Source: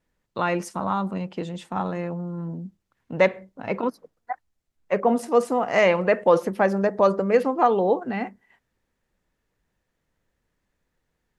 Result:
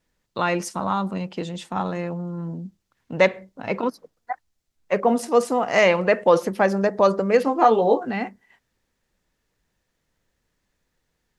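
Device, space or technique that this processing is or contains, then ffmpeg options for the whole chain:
presence and air boost: -filter_complex "[0:a]equalizer=f=5000:t=o:w=1.7:g=5.5,highshelf=f=9700:g=3.5,asettb=1/sr,asplit=3[s0][s1][s2];[s0]atrim=end=7.454[s3];[s1]atrim=start=7.45:end=8.08,asetpts=PTS-STARTPTS,afade=t=in:d=0.004:c=qsin,afade=t=out:st=0.626:d=0.004:c=qsin,asplit=2[s4][s5];[s5]adelay=18,volume=0.668[s6];[s4][s6]amix=inputs=2:normalize=0,atrim=end_sample=27783[s7];[s2]atrim=start=8.076[s8];[s3][s7]acrossfade=d=0.004:c1=hsin:c2=qsin[s9];[s9][s8]acrossfade=d=0.004:c1=qsin:c2=hsin,volume=1.12"

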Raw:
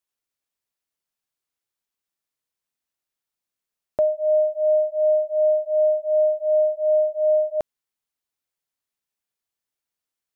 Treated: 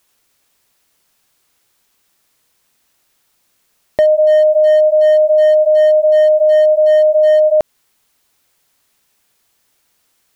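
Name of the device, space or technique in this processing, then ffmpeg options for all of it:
loud club master: -af "acompressor=threshold=0.0398:ratio=1.5,asoftclip=type=hard:threshold=0.1,alimiter=level_in=33.5:limit=0.891:release=50:level=0:latency=1,volume=0.531"

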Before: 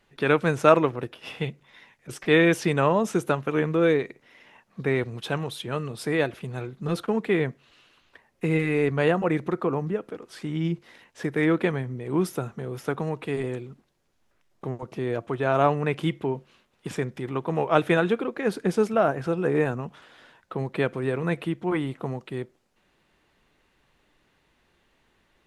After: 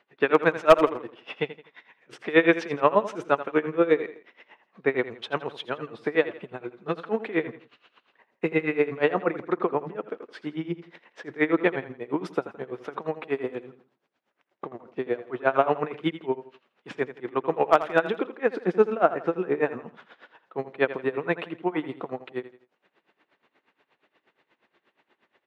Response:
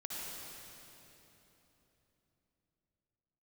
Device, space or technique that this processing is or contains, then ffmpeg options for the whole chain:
helicopter radio: -filter_complex "[0:a]highpass=310,lowpass=2900,aeval=exprs='val(0)*pow(10,-23*(0.5-0.5*cos(2*PI*8.4*n/s))/20)':c=same,asoftclip=type=hard:threshold=0.251,asettb=1/sr,asplit=3[s0][s1][s2];[s0]atrim=end=6.244[s3];[s1]atrim=start=6.24:end=6.64,asetpts=PTS-STARTPTS,afade=t=in:d=0.004:c=qsin,afade=t=out:st=0.396:d=0.004:c=qsin,equalizer=f=5600:t=o:w=1.3:g=-6.5[s4];[s2]atrim=start=6.636[s5];[s3][s4]acrossfade=d=0.004:c1=hsin:c2=qsin[s6];[s6][s5]acrossfade=d=0.004:c1=qsin:c2=hsin,aecho=1:1:83|166|249:0.2|0.0718|0.0259,volume=2.11"

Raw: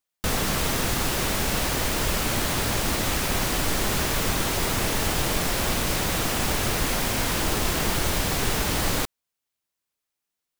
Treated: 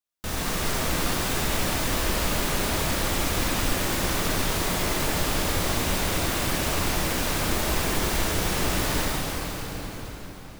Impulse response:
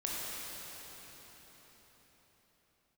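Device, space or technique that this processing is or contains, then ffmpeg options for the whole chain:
cathedral: -filter_complex "[1:a]atrim=start_sample=2205[s0];[0:a][s0]afir=irnorm=-1:irlink=0,volume=0.531"

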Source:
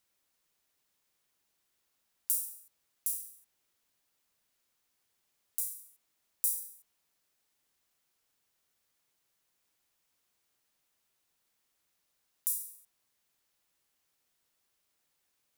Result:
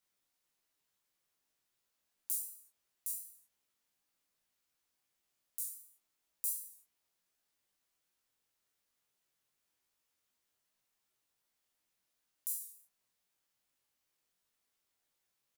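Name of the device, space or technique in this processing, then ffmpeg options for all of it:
double-tracked vocal: -filter_complex "[0:a]asplit=2[s0][s1];[s1]adelay=16,volume=0.668[s2];[s0][s2]amix=inputs=2:normalize=0,flanger=delay=19:depth=7.7:speed=2.7,volume=0.668"

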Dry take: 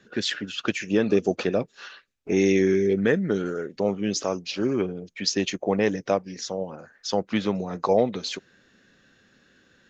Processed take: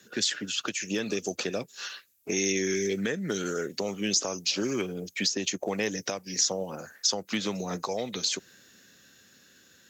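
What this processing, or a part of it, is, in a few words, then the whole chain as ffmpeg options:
FM broadcast chain: -filter_complex "[0:a]highpass=f=57:w=0.5412,highpass=f=57:w=1.3066,dynaudnorm=f=440:g=11:m=2.24,acrossover=split=120|1500[s0][s1][s2];[s0]acompressor=threshold=0.00282:ratio=4[s3];[s1]acompressor=threshold=0.0562:ratio=4[s4];[s2]acompressor=threshold=0.0251:ratio=4[s5];[s3][s4][s5]amix=inputs=3:normalize=0,aemphasis=mode=production:type=50fm,alimiter=limit=0.15:level=0:latency=1:release=262,asoftclip=type=hard:threshold=0.141,lowpass=f=15000:w=0.5412,lowpass=f=15000:w=1.3066,aemphasis=mode=production:type=50fm,volume=0.794"

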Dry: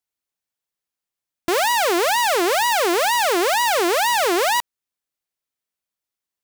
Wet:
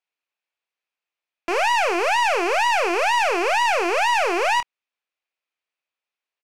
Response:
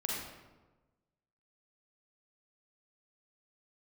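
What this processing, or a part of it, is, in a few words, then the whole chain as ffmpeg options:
intercom: -filter_complex "[0:a]highpass=440,lowpass=3700,equalizer=f=2500:t=o:w=0.3:g=8,asoftclip=type=tanh:threshold=0.178,asplit=2[s0][s1];[s1]adelay=26,volume=0.282[s2];[s0][s2]amix=inputs=2:normalize=0,volume=1.26"

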